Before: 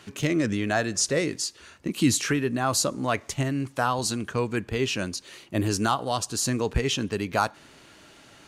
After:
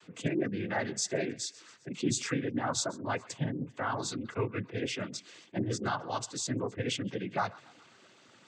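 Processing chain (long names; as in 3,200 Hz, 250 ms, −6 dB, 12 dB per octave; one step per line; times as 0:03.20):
feedback echo with a high-pass in the loop 133 ms, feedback 62%, high-pass 780 Hz, level −19 dB
gate on every frequency bin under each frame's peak −25 dB strong
cochlear-implant simulation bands 16
level −7 dB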